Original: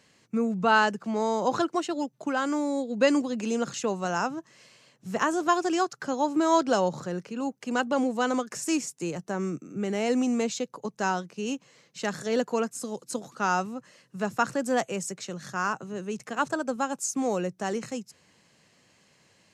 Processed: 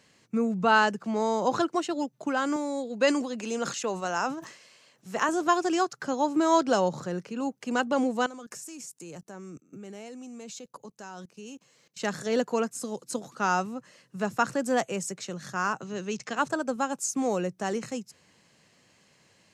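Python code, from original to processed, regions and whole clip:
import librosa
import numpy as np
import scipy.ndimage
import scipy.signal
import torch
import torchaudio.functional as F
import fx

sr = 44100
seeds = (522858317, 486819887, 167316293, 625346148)

y = fx.chain(x, sr, fx.highpass(hz=380.0, slope=6),
    fx.sustainer(db_per_s=92.0), at=(2.56, 5.29))
y = fx.chain(y, sr, fx.high_shelf(hz=7600.0, db=10.0),
    fx.notch(hz=2000.0, q=22.0),
    fx.level_steps(step_db=21), at=(8.26, 12.0))
y = fx.chain(y, sr, fx.lowpass(hz=6400.0, slope=24),
    fx.high_shelf(hz=2200.0, db=9.5), at=(15.81, 16.37))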